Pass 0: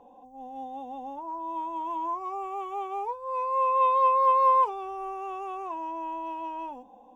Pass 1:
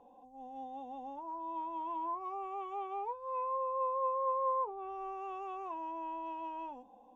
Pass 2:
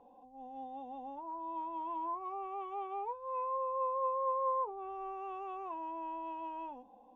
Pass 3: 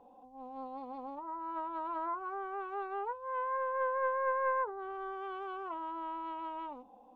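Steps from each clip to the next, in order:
treble cut that deepens with the level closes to 770 Hz, closed at −23 dBFS; level −6.5 dB
high-frequency loss of the air 110 metres
highs frequency-modulated by the lows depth 0.21 ms; level +1.5 dB

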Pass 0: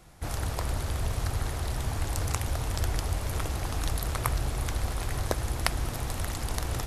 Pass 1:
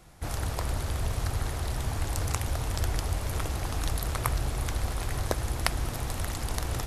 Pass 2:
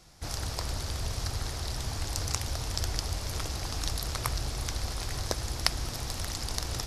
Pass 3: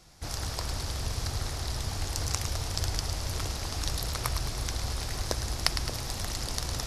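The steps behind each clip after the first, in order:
no processing that can be heard
parametric band 5,100 Hz +12 dB 1 octave; level −4 dB
echo with a time of its own for lows and highs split 770 Hz, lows 582 ms, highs 107 ms, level −8 dB

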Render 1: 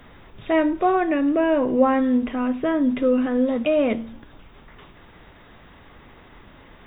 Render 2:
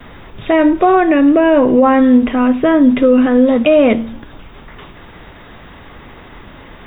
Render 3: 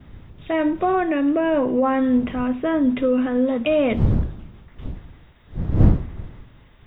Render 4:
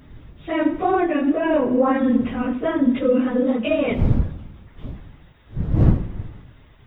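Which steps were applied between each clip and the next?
noise gate with hold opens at −42 dBFS; boost into a limiter +12 dB; level −1 dB
wind on the microphone 170 Hz −18 dBFS; multiband upward and downward expander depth 40%; level −9.5 dB
random phases in long frames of 50 ms; convolution reverb RT60 0.95 s, pre-delay 67 ms, DRR 14.5 dB

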